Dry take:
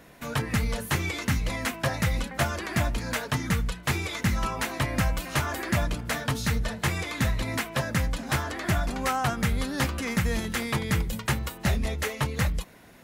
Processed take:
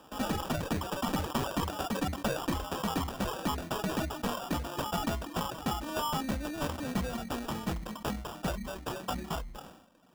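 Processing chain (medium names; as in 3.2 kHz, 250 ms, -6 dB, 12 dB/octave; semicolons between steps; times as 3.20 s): gliding tape speed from 185% -> 72%; reverb removal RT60 1.5 s; high-pass 170 Hz 6 dB/octave; static phaser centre 410 Hz, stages 6; sample-rate reducer 2.1 kHz, jitter 0%; one-sided clip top -28.5 dBFS; decay stretcher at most 70 dB/s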